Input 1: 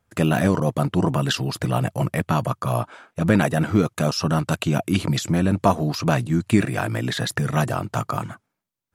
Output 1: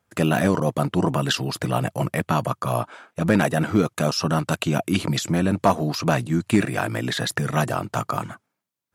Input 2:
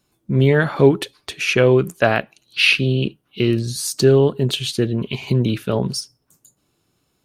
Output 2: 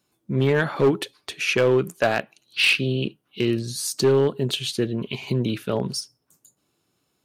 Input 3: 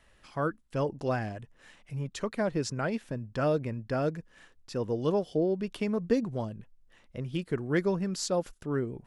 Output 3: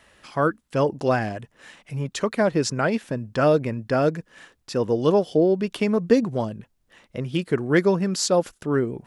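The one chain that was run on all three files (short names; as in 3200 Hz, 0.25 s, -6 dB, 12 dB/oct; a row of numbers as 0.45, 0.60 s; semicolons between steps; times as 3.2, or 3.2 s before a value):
HPF 150 Hz 6 dB/oct; overloaded stage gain 9 dB; match loudness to -23 LUFS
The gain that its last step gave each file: +1.0, -3.0, +9.5 dB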